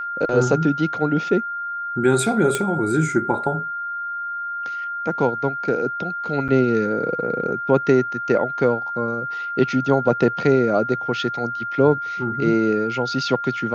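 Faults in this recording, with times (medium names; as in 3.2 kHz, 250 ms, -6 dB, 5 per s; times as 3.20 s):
whine 1.4 kHz -25 dBFS
2.55 s: pop -7 dBFS
6.48–6.49 s: dropout 7.8 ms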